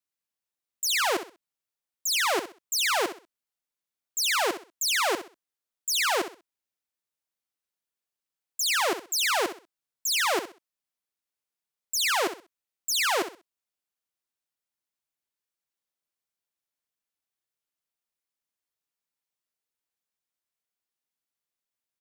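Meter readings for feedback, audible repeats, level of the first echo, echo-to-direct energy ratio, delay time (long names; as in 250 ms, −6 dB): 26%, 3, −11.0 dB, −10.5 dB, 64 ms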